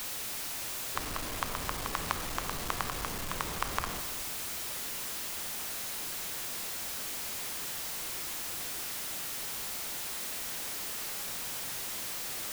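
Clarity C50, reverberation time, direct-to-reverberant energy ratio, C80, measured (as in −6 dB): 9.5 dB, 1.6 s, 8.5 dB, 10.5 dB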